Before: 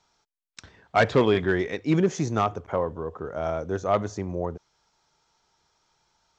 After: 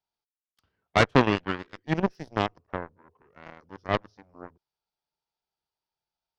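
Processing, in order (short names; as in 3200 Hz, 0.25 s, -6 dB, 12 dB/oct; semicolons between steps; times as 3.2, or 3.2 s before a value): added harmonics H 3 -10 dB, 7 -38 dB, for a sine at -8 dBFS; formant shift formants -3 st; gain +5.5 dB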